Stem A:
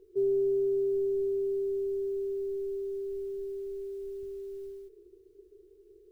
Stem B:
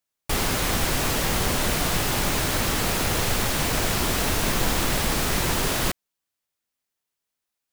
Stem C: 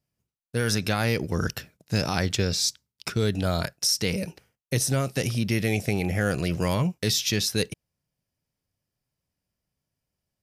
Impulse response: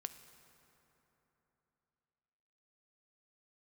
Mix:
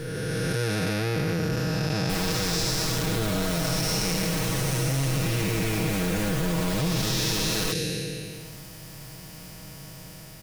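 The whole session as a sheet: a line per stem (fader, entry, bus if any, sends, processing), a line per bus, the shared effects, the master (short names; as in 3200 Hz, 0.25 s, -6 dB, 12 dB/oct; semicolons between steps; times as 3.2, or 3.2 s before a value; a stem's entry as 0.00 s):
-2.5 dB, 0.00 s, no send, compressor, threshold -39 dBFS, peak gain reduction 13 dB; fixed phaser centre 360 Hz, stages 6
-14.5 dB, 1.80 s, no send, dry
+0.5 dB, 0.00 s, no send, time blur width 0.572 s; limiter -23 dBFS, peak gain reduction 9 dB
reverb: off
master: comb 6.3 ms, depth 85%; fast leveller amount 70%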